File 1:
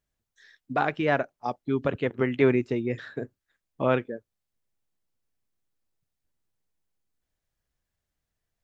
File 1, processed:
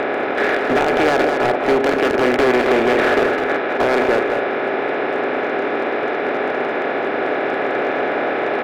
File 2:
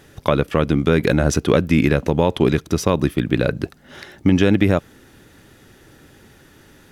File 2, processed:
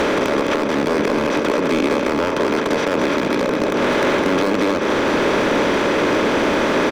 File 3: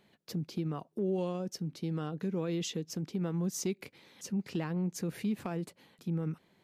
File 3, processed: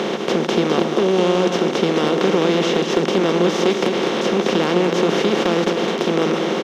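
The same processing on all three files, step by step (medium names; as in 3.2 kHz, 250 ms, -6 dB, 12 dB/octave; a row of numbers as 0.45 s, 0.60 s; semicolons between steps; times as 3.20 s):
spectral levelling over time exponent 0.2; three-band isolator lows -23 dB, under 230 Hz, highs -24 dB, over 4.3 kHz; compression 6:1, threshold -18 dBFS; hard clipper -21 dBFS; on a send: delay 208 ms -6 dB; on the sum: normalise loudness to -18 LUFS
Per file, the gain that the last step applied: +9.0 dB, +6.0 dB, +13.0 dB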